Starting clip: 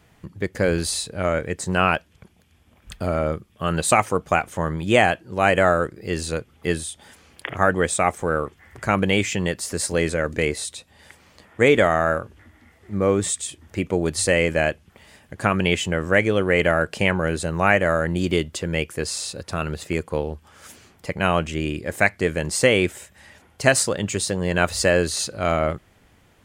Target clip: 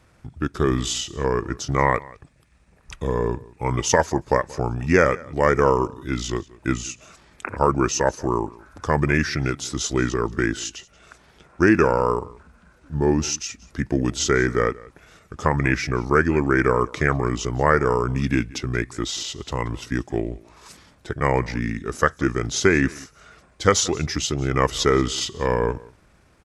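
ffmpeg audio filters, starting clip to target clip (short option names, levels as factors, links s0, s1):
-af "asetrate=33038,aresample=44100,atempo=1.33484,aecho=1:1:181:0.0794"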